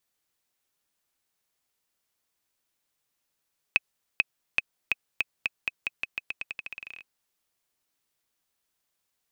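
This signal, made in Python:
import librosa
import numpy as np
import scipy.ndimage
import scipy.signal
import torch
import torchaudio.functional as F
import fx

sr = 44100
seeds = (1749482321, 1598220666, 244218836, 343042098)

y = fx.bouncing_ball(sr, first_gap_s=0.44, ratio=0.87, hz=2550.0, decay_ms=27.0, level_db=-6.5)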